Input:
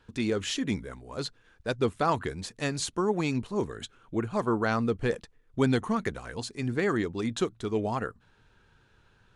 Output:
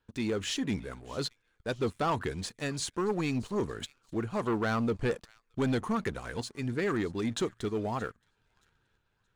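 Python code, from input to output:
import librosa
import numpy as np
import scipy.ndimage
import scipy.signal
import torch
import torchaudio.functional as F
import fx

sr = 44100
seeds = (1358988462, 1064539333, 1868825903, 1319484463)

y = fx.tremolo_shape(x, sr, shape='saw_up', hz=0.78, depth_pct=40)
y = fx.echo_wet_highpass(y, sr, ms=624, feedback_pct=41, hz=2000.0, wet_db=-20.0)
y = fx.leveller(y, sr, passes=2)
y = y * librosa.db_to_amplitude(-6.5)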